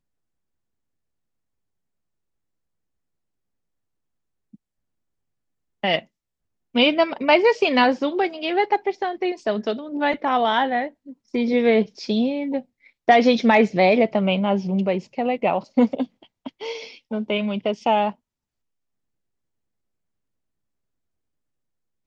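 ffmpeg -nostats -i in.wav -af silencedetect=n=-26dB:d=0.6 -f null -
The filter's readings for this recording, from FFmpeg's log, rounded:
silence_start: 0.00
silence_end: 5.84 | silence_duration: 5.84
silence_start: 5.99
silence_end: 6.75 | silence_duration: 0.77
silence_start: 18.10
silence_end: 22.06 | silence_duration: 3.96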